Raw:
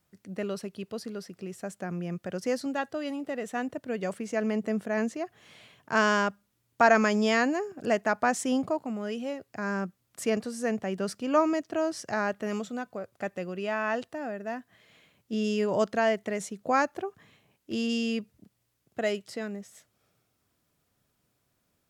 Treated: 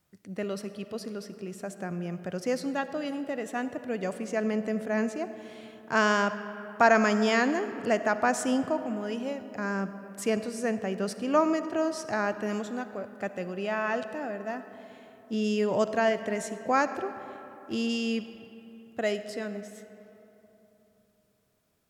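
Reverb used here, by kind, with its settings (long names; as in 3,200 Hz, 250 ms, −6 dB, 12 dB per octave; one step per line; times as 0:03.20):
comb and all-pass reverb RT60 3.4 s, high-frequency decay 0.5×, pre-delay 20 ms, DRR 11 dB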